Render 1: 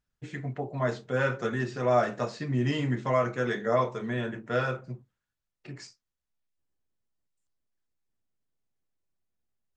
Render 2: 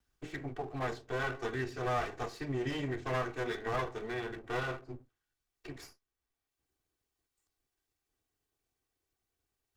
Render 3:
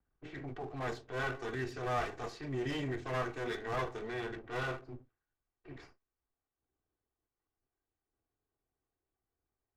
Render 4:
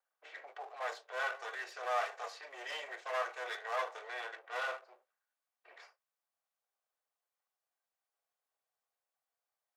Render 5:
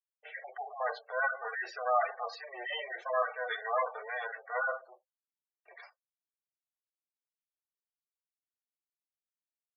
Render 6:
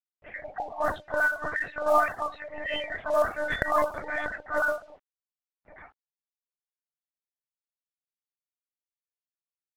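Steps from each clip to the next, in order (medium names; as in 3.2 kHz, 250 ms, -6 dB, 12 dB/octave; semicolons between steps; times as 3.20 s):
comb filter that takes the minimum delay 2.6 ms; three bands compressed up and down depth 40%; trim -5.5 dB
level-controlled noise filter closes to 1.3 kHz, open at -33 dBFS; transient shaper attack -8 dB, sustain 0 dB
elliptic high-pass 540 Hz, stop band 60 dB; trim +1.5 dB
spectral gate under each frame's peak -10 dB strong; expander -58 dBFS; trim +7 dB
monotone LPC vocoder at 8 kHz 300 Hz; companded quantiser 6-bit; level-controlled noise filter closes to 1.2 kHz, open at -29.5 dBFS; trim +6.5 dB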